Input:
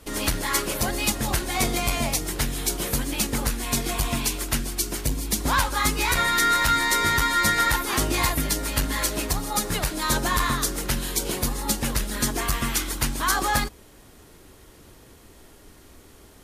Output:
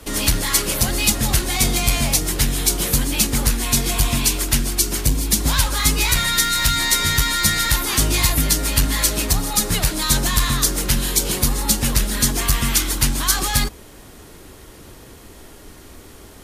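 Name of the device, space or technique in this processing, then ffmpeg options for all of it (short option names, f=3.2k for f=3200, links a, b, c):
one-band saturation: -filter_complex "[0:a]acrossover=split=210|2500[a][b][c];[b]asoftclip=type=tanh:threshold=-35dB[d];[a][d][c]amix=inputs=3:normalize=0,volume=8dB"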